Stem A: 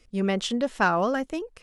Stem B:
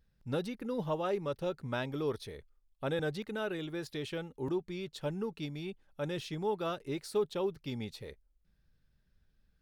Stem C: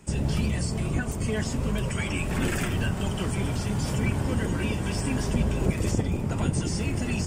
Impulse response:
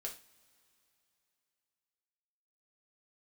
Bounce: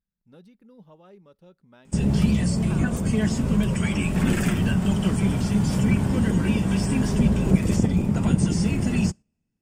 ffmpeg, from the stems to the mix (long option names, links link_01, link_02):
-filter_complex "[0:a]acompressor=threshold=-26dB:ratio=6,adelay=1900,volume=-13dB[link_01];[1:a]equalizer=frequency=130:width_type=o:width=0.4:gain=-6.5,volume=-12dB,asplit=2[link_02][link_03];[link_03]volume=-21.5dB[link_04];[2:a]adelay=1850,volume=0.5dB,asplit=2[link_05][link_06];[link_06]volume=-22dB[link_07];[3:a]atrim=start_sample=2205[link_08];[link_04][link_07]amix=inputs=2:normalize=0[link_09];[link_09][link_08]afir=irnorm=-1:irlink=0[link_10];[link_01][link_02][link_05][link_10]amix=inputs=4:normalize=0,equalizer=frequency=190:width=2.1:gain=10.5,agate=range=-7dB:threshold=-37dB:ratio=16:detection=peak"